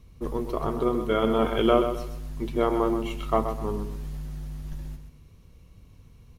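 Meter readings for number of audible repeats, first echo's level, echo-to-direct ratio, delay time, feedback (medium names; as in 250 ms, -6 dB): 3, -8.5 dB, -8.0 dB, 128 ms, 32%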